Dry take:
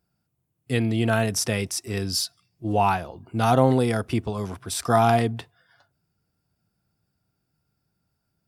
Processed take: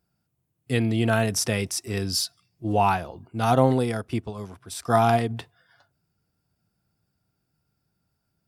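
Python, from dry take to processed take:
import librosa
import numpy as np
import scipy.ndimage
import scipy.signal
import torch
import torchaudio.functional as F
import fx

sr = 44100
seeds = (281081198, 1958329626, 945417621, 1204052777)

y = fx.upward_expand(x, sr, threshold_db=-33.0, expansion=1.5, at=(3.26, 5.29), fade=0.02)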